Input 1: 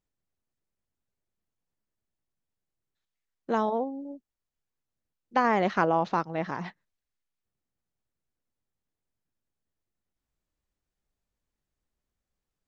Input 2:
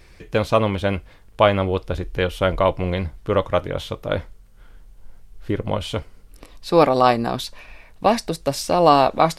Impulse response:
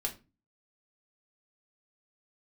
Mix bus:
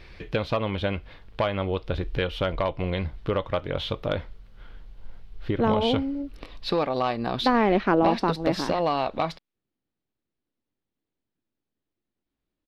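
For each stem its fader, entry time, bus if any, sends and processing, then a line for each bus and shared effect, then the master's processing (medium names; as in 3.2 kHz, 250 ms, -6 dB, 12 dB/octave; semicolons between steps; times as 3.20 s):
-1.0 dB, 2.10 s, no send, peaking EQ 300 Hz +10.5 dB 1.3 oct
+1.5 dB, 0.00 s, no send, compression 4:1, threshold -25 dBFS, peak gain reduction 14 dB; hard clipper -18 dBFS, distortion -22 dB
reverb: none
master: resonant high shelf 5.6 kHz -13.5 dB, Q 1.5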